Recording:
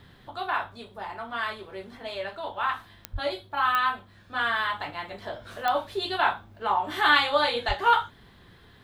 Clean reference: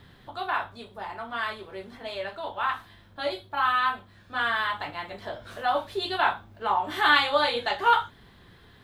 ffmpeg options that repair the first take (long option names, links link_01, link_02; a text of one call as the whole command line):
ffmpeg -i in.wav -filter_complex "[0:a]adeclick=threshold=4,asplit=3[link_01][link_02][link_03];[link_01]afade=type=out:start_time=3.12:duration=0.02[link_04];[link_02]highpass=frequency=140:width=0.5412,highpass=frequency=140:width=1.3066,afade=type=in:start_time=3.12:duration=0.02,afade=type=out:start_time=3.24:duration=0.02[link_05];[link_03]afade=type=in:start_time=3.24:duration=0.02[link_06];[link_04][link_05][link_06]amix=inputs=3:normalize=0,asplit=3[link_07][link_08][link_09];[link_07]afade=type=out:start_time=7.67:duration=0.02[link_10];[link_08]highpass=frequency=140:width=0.5412,highpass=frequency=140:width=1.3066,afade=type=in:start_time=7.67:duration=0.02,afade=type=out:start_time=7.79:duration=0.02[link_11];[link_09]afade=type=in:start_time=7.79:duration=0.02[link_12];[link_10][link_11][link_12]amix=inputs=3:normalize=0" out.wav